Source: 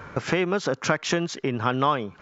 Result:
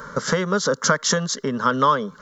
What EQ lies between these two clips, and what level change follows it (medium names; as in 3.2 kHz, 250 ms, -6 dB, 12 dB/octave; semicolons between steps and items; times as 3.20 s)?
treble shelf 3.1 kHz +10 dB; static phaser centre 500 Hz, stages 8; +5.5 dB